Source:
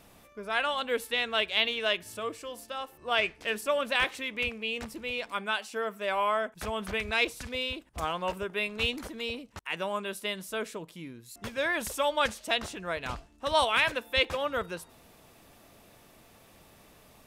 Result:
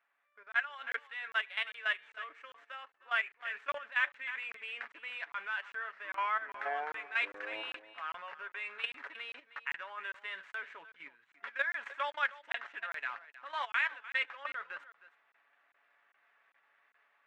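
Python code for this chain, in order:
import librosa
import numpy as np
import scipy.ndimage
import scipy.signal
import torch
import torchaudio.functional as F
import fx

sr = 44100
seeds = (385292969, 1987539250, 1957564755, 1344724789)

y = scipy.signal.medfilt(x, 9)
y = fx.level_steps(y, sr, step_db=14)
y = scipy.signal.sosfilt(scipy.signal.butter(2, 1300.0, 'highpass', fs=sr, output='sos'), y)
y = fx.spacing_loss(y, sr, db_at_10k=30)
y = fx.echo_pitch(y, sr, ms=263, semitones=-6, count=2, db_per_echo=-6.0, at=(5.66, 7.75))
y = fx.peak_eq(y, sr, hz=1700.0, db=12.5, octaves=1.1)
y = y + 0.44 * np.pad(y, (int(7.1 * sr / 1000.0), 0))[:len(y)]
y = y + 10.0 ** (-16.0 / 20.0) * np.pad(y, (int(312 * sr / 1000.0), 0))[:len(y)]
y = fx.rider(y, sr, range_db=4, speed_s=0.5)
y = fx.buffer_crackle(y, sr, first_s=0.52, period_s=0.4, block=1024, kind='zero')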